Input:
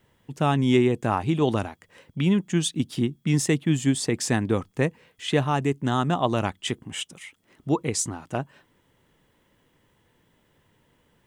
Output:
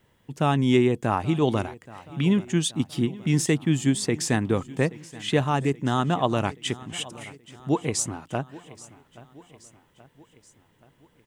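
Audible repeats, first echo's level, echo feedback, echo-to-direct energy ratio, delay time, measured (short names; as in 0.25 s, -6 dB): 3, -19.5 dB, 55%, -18.0 dB, 0.827 s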